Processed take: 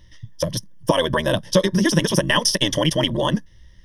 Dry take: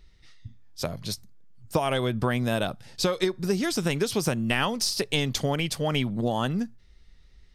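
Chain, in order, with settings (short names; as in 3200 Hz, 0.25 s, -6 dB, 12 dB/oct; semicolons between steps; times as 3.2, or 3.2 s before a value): ripple EQ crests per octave 1.2, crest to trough 15 dB; granular stretch 0.51×, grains 24 ms; gain +6 dB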